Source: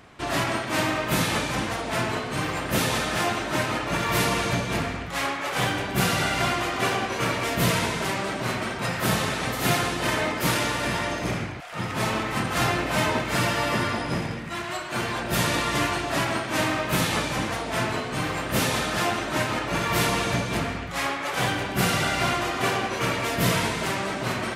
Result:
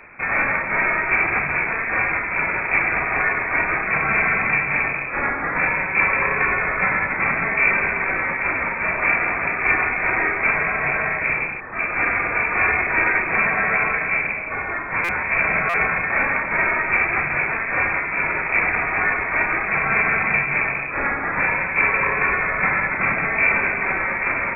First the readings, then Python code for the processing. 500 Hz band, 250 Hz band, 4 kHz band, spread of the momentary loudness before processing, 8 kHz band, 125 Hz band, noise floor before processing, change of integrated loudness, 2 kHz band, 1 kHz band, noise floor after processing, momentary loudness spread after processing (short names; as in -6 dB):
-1.0 dB, -5.0 dB, under -25 dB, 5 LU, under -30 dB, -6.5 dB, -32 dBFS, +6.0 dB, +10.5 dB, +3.5 dB, -26 dBFS, 4 LU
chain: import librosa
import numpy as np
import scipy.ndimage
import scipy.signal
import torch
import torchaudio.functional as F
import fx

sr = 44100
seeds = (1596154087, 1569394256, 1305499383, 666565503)

y = fx.cvsd(x, sr, bps=16000)
y = fx.freq_invert(y, sr, carrier_hz=2500)
y = fx.buffer_glitch(y, sr, at_s=(15.04, 15.69), block=256, repeats=7)
y = F.gain(torch.from_numpy(y), 6.5).numpy()